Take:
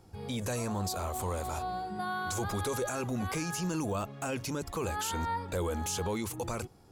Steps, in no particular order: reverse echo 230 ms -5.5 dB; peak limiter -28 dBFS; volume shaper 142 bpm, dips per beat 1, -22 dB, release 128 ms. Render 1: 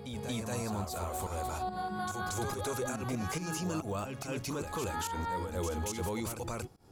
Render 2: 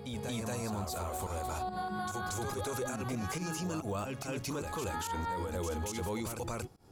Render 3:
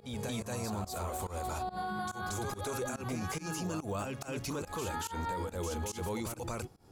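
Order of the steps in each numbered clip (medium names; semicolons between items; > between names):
peak limiter > volume shaper > reverse echo; volume shaper > reverse echo > peak limiter; reverse echo > peak limiter > volume shaper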